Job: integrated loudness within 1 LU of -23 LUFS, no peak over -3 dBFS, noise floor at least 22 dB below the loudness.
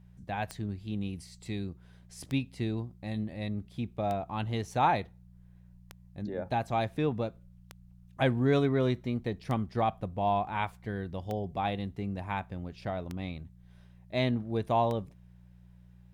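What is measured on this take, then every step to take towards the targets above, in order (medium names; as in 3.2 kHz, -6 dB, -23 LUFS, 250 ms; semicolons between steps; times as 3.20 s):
clicks found 9; hum 60 Hz; highest harmonic 180 Hz; hum level -54 dBFS; loudness -32.5 LUFS; peak level -14.0 dBFS; loudness target -23.0 LUFS
-> de-click; de-hum 60 Hz, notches 3; trim +9.5 dB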